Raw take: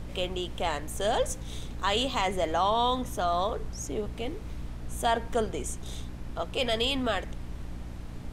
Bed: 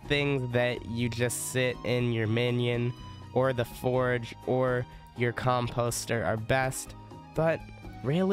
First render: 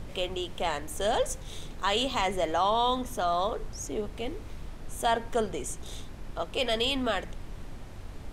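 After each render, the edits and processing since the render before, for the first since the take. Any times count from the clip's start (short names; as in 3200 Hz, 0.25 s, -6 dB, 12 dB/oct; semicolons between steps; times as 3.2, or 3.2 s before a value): de-hum 60 Hz, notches 5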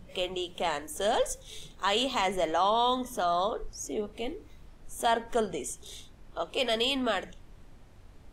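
noise print and reduce 11 dB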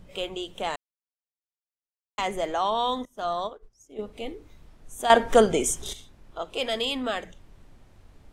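0.76–2.18 mute; 3.05–3.99 upward expander 2.5:1, over -40 dBFS; 5.1–5.93 gain +11 dB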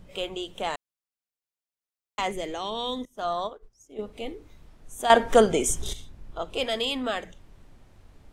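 2.32–3.15 band shelf 1000 Hz -9 dB; 5.69–6.64 low shelf 190 Hz +9 dB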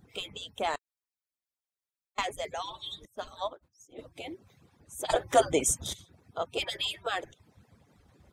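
median-filter separation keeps percussive; notch 2900 Hz, Q 13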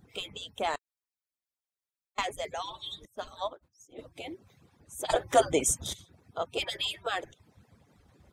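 nothing audible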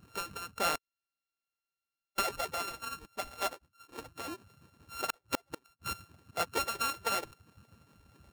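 sample sorter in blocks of 32 samples; flipped gate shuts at -17 dBFS, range -41 dB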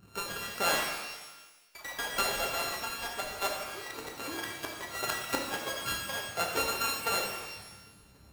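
echoes that change speed 0.151 s, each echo +3 st, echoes 3, each echo -6 dB; shimmer reverb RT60 1.2 s, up +12 st, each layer -8 dB, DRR 0 dB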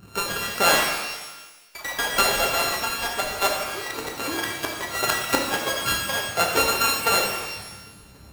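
gain +10 dB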